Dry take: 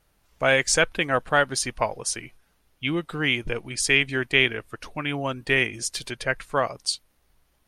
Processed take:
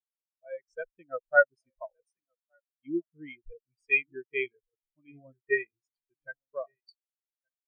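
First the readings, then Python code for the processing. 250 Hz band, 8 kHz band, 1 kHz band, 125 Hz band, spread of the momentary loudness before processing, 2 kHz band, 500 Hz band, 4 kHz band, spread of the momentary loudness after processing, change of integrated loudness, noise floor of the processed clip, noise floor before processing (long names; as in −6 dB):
−11.0 dB, below −40 dB, −8.5 dB, −27.0 dB, 10 LU, −7.0 dB, −6.0 dB, −30.0 dB, 22 LU, −5.5 dB, below −85 dBFS, −67 dBFS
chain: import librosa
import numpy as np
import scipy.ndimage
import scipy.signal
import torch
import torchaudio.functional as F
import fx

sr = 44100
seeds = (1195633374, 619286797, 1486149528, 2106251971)

y = fx.fade_in_head(x, sr, length_s=1.01)
y = y + 10.0 ** (-12.0 / 20.0) * np.pad(y, (int(1168 * sr / 1000.0), 0))[:len(y)]
y = fx.spectral_expand(y, sr, expansion=4.0)
y = y * librosa.db_to_amplitude(-4.0)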